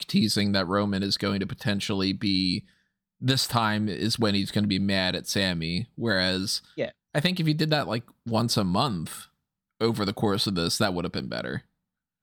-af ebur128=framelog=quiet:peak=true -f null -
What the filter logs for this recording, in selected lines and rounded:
Integrated loudness:
  I:         -26.1 LUFS
  Threshold: -36.3 LUFS
Loudness range:
  LRA:         1.8 LU
  Threshold: -46.4 LUFS
  LRA low:   -27.4 LUFS
  LRA high:  -25.6 LUFS
True peak:
  Peak:      -10.8 dBFS